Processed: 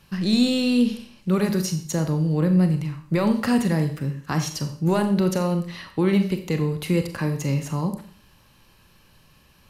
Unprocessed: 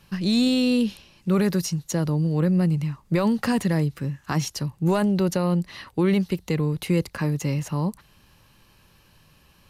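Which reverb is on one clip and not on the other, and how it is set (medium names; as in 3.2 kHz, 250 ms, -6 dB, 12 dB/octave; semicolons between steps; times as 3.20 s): Schroeder reverb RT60 0.51 s, combs from 29 ms, DRR 6.5 dB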